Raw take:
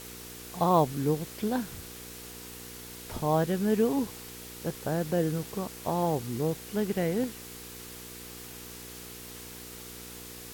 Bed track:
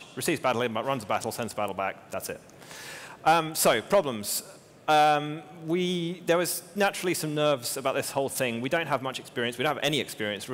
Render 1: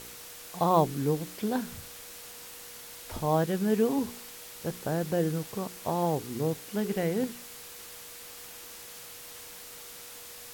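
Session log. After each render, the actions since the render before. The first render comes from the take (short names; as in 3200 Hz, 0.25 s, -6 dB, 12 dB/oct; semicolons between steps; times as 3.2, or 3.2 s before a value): de-hum 60 Hz, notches 7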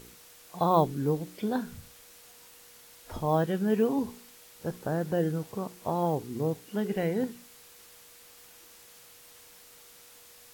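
noise print and reduce 8 dB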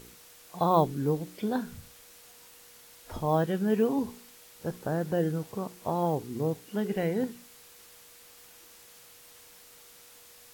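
nothing audible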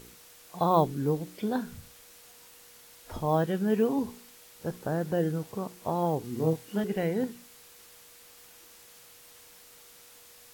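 6.21–6.84 doubler 25 ms -4 dB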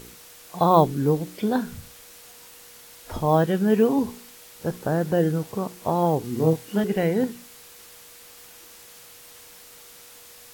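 gain +6.5 dB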